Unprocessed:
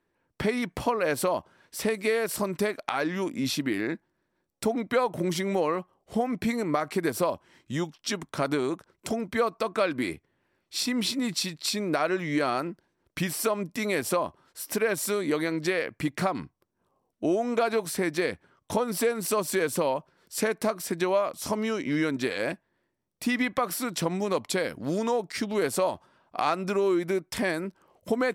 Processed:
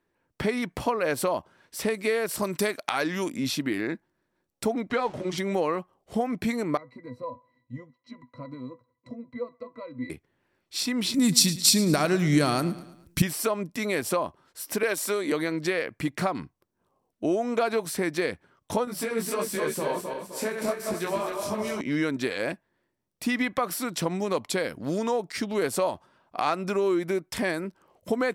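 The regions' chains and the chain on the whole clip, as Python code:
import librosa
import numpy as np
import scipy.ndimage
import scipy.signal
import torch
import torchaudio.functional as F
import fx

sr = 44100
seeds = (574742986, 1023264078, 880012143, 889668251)

y = fx.chain(x, sr, fx.highpass(hz=44.0, slope=12),
    fx.high_shelf(hz=3200.0, db=9.0), at=(2.42, 3.37))
y = fx.chain(y, sr, fx.zero_step(step_db=-39.5),
    fx.lowpass(hz=6000.0, slope=12),
    fx.notch_comb(f0_hz=170.0), at=(4.9, 5.38))
y = fx.chain(y, sr, fx.octave_resonator(note='B', decay_s=0.12),
    fx.echo_wet_bandpass(ms=63, feedback_pct=49, hz=1300.0, wet_db=-21.5), at=(6.77, 10.1))
y = fx.chain(y, sr, fx.bass_treble(bass_db=14, treble_db=14),
    fx.echo_feedback(ms=109, feedback_pct=47, wet_db=-16), at=(11.14, 13.22))
y = fx.chain(y, sr, fx.highpass(hz=280.0, slope=12),
    fx.band_squash(depth_pct=70), at=(14.83, 15.32))
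y = fx.chain(y, sr, fx.reverse_delay_fb(ms=129, feedback_pct=67, wet_db=-4.5),
    fx.detune_double(cents=13), at=(18.85, 21.81))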